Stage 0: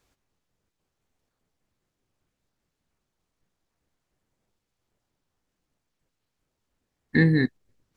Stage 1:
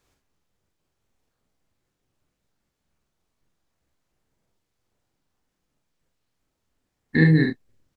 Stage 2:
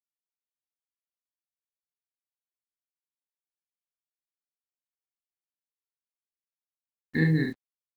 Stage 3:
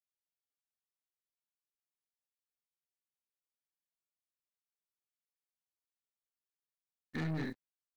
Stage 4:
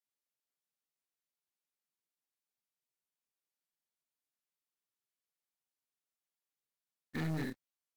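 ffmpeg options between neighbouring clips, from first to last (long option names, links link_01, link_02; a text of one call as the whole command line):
ffmpeg -i in.wav -af "aecho=1:1:44|70:0.631|0.376" out.wav
ffmpeg -i in.wav -af "acrusher=bits=7:mix=0:aa=0.5,volume=-7dB" out.wav
ffmpeg -i in.wav -af "aeval=exprs='(tanh(25.1*val(0)+0.45)-tanh(0.45))/25.1':channel_layout=same,volume=-5.5dB" out.wav
ffmpeg -i in.wav -af "acrusher=bits=4:mode=log:mix=0:aa=0.000001" -ar 44100 -c:a libvorbis -b:a 96k out.ogg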